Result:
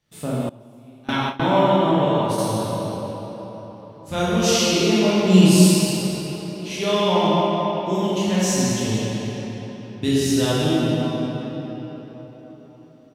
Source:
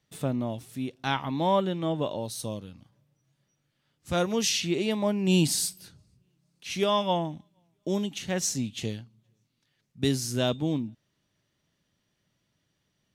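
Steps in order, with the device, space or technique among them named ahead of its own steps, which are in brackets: cave (delay 227 ms -14.5 dB; reverberation RT60 4.5 s, pre-delay 13 ms, DRR -9.5 dB); 0.49–2.47 s: gate with hold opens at -10 dBFS; trim -1 dB

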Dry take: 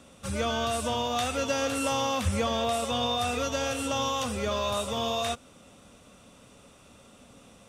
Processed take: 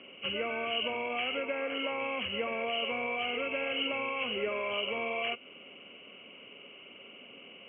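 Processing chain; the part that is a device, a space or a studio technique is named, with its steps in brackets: 1.41–2.01 s: tone controls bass -5 dB, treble -8 dB; hearing aid with frequency lowering (knee-point frequency compression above 2 kHz 4:1; compression 2.5:1, threshold -33 dBFS, peak gain reduction 7.5 dB; cabinet simulation 270–5400 Hz, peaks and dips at 390 Hz +8 dB, 840 Hz -5 dB, 1.3 kHz -3 dB, 2.9 kHz +6 dB, 4.7 kHz +5 dB)

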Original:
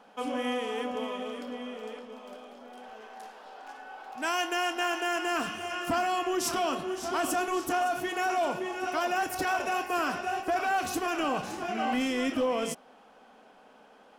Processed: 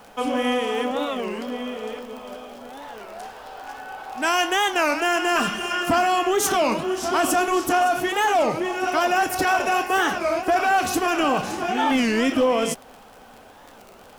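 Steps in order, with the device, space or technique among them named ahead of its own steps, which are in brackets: warped LP (warped record 33 1/3 rpm, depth 250 cents; crackle 45 per s -41 dBFS; pink noise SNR 33 dB); 5.35–5.83 s: comb 5 ms, depth 65%; trim +8.5 dB

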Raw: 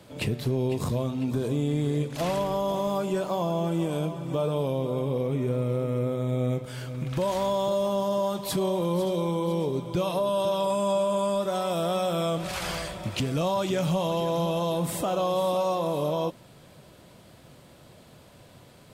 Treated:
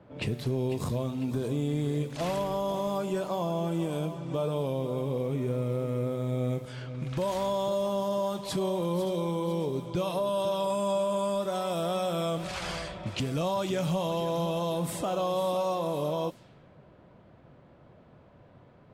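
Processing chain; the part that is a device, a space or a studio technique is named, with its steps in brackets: cassette deck with a dynamic noise filter (white noise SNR 34 dB; level-controlled noise filter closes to 1.3 kHz, open at -25 dBFS); trim -3 dB

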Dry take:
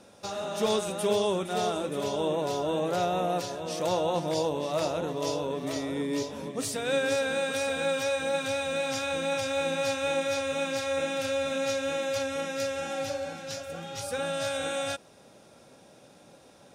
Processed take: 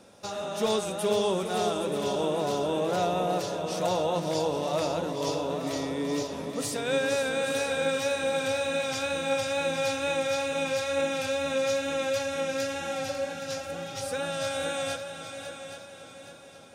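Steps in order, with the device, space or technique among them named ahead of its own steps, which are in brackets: multi-head tape echo (multi-head delay 274 ms, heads second and third, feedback 47%, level -10.5 dB; wow and flutter 22 cents)

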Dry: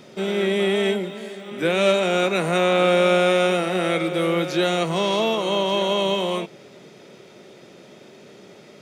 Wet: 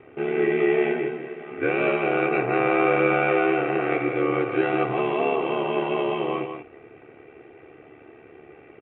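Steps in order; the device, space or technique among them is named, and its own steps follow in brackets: elliptic low-pass 2.6 kHz, stop band 50 dB; ring-modulated robot voice (ring modulator 36 Hz; comb 2.6 ms, depth 69%); delay 169 ms -7 dB

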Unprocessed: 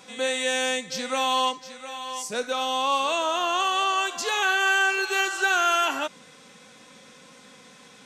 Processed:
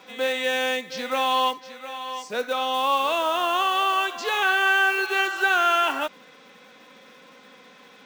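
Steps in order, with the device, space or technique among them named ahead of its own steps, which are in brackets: early digital voice recorder (band-pass 240–3600 Hz; block-companded coder 5-bit); trim +2 dB

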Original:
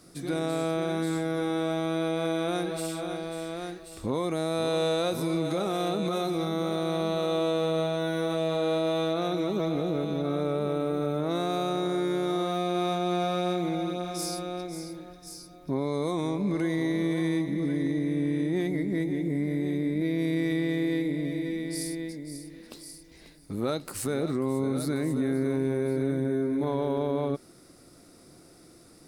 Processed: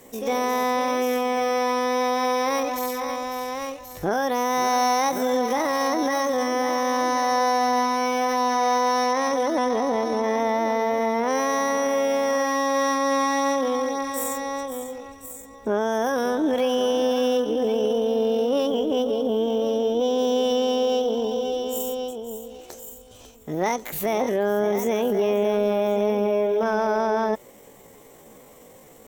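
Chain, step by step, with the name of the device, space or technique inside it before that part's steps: chipmunk voice (pitch shift +7.5 st); trim +5.5 dB

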